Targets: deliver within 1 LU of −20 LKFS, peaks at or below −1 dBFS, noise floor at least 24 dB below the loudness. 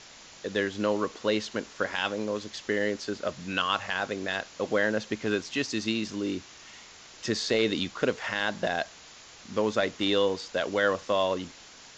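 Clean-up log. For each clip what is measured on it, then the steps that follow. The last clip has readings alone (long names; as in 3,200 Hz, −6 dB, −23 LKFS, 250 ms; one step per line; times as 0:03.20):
background noise floor −50 dBFS; target noise floor −53 dBFS; integrated loudness −29.0 LKFS; sample peak −12.0 dBFS; target loudness −20.0 LKFS
→ broadband denoise 6 dB, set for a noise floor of −50 dBFS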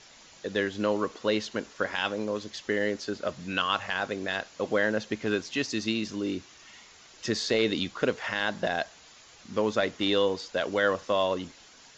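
background noise floor −54 dBFS; integrated loudness −29.0 LKFS; sample peak −12.5 dBFS; target loudness −20.0 LKFS
→ level +9 dB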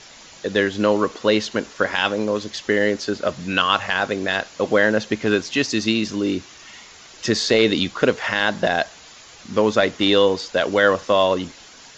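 integrated loudness −20.0 LKFS; sample peak −3.5 dBFS; background noise floor −45 dBFS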